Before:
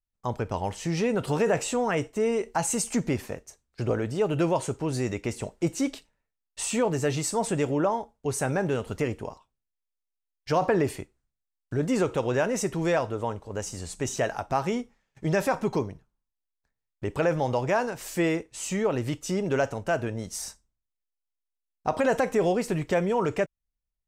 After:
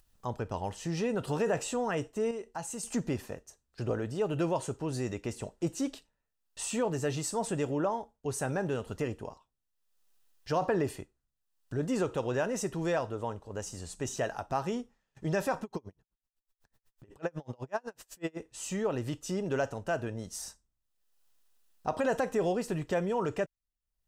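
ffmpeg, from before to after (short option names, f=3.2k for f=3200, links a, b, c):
-filter_complex "[0:a]asettb=1/sr,asplit=3[a][b][c];[a]atrim=end=15.634[d];[b]atrim=start=15.63:end=18.37,asetpts=PTS-STARTPTS,afade=t=in:d=0.004:c=qsin,afade=t=out:st=2.736:d=0.004:c=qsin,aeval=exprs='val(0)*pow(10,-37*(0.5-0.5*cos(2*PI*8*n/s))/20)':c=same[e];[c]atrim=start=18.366[f];[d][e]acrossfade=d=0.004:c1=hsin:c2=qsin[g];[g][f]acrossfade=d=0.004:c1=qsin:c2=hsin,asplit=3[h][i][j];[h]atrim=end=2.312[k];[i]atrim=start=2.308:end=2.832,asetpts=PTS-STARTPTS,volume=-6.5dB[l];[j]atrim=start=2.828[m];[k][l]acrossfade=d=0.004:c1=hsin:c2=hsin[n];[n][m]acrossfade=d=0.004:c1=hsin:c2=hsin,bandreject=f=2.2k:w=7.1,acompressor=mode=upward:threshold=-42dB:ratio=2.5,volume=-5.5dB"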